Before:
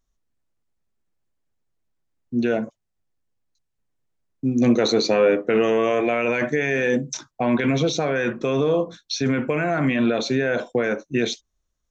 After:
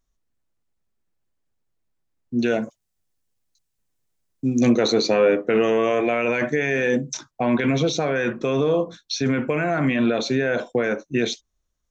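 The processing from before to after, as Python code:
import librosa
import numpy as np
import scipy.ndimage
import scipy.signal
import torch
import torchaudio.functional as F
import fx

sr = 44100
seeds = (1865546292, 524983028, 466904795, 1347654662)

y = fx.high_shelf(x, sr, hz=3700.0, db=10.5, at=(2.39, 4.7))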